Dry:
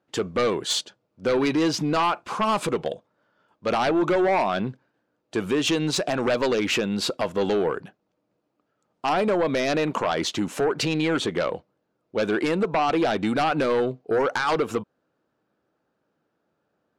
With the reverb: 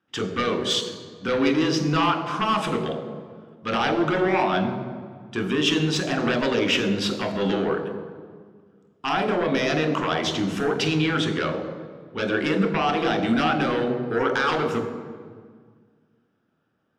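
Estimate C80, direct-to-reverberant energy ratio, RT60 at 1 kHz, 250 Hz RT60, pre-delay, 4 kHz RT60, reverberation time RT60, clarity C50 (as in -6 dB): 9.5 dB, 5.0 dB, 1.7 s, 2.3 s, 24 ms, 1.2 s, 1.8 s, 9.0 dB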